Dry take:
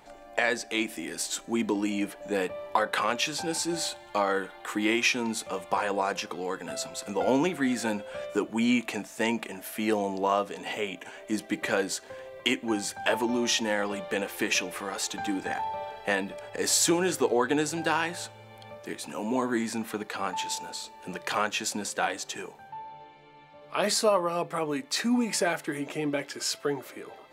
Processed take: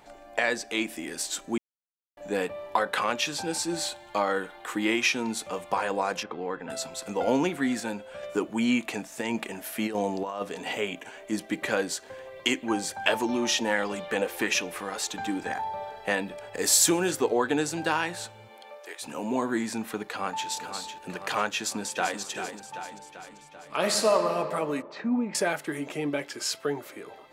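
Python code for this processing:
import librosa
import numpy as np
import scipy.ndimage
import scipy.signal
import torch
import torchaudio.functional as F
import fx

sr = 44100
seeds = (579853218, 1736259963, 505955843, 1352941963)

y = fx.lowpass(x, sr, hz=2400.0, slope=12, at=(6.23, 6.7))
y = fx.over_compress(y, sr, threshold_db=-28.0, ratio=-0.5, at=(9.12, 11.01))
y = fx.bell_lfo(y, sr, hz=1.4, low_hz=450.0, high_hz=6500.0, db=7, at=(12.26, 14.49), fade=0.02)
y = fx.peak_eq(y, sr, hz=2800.0, db=-5.5, octaves=0.49, at=(15.52, 16.03))
y = fx.high_shelf(y, sr, hz=9200.0, db=10.0, at=(16.54, 17.11))
y = fx.highpass(y, sr, hz=fx.line((18.47, 210.0), (19.01, 590.0)), slope=24, at=(18.47, 19.01), fade=0.02)
y = fx.echo_throw(y, sr, start_s=20.05, length_s=0.43, ms=500, feedback_pct=60, wet_db=-8.0)
y = fx.echo_throw(y, sr, start_s=21.56, length_s=0.64, ms=390, feedback_pct=60, wet_db=-8.5)
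y = fx.reverb_throw(y, sr, start_s=23.74, length_s=0.58, rt60_s=2.5, drr_db=5.0)
y = fx.spacing_loss(y, sr, db_at_10k=42, at=(24.82, 25.35))
y = fx.edit(y, sr, fx.silence(start_s=1.58, length_s=0.59),
    fx.clip_gain(start_s=7.8, length_s=0.43, db=-3.5), tone=tone)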